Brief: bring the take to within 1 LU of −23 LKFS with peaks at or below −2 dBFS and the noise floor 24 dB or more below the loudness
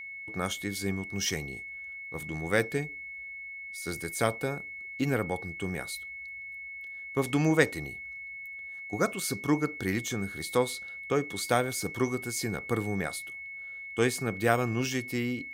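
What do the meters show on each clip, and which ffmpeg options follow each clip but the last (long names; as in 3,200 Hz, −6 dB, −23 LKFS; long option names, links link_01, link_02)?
interfering tone 2,200 Hz; level of the tone −39 dBFS; integrated loudness −31.5 LKFS; sample peak −7.5 dBFS; target loudness −23.0 LKFS
→ -af "bandreject=frequency=2200:width=30"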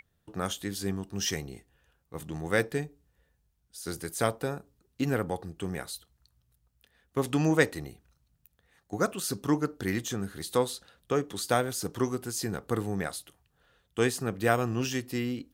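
interfering tone none found; integrated loudness −31.0 LKFS; sample peak −7.5 dBFS; target loudness −23.0 LKFS
→ -af "volume=8dB,alimiter=limit=-2dB:level=0:latency=1"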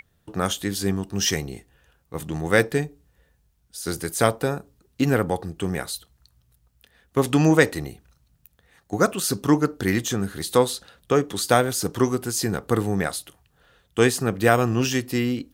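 integrated loudness −23.0 LKFS; sample peak −2.0 dBFS; background noise floor −66 dBFS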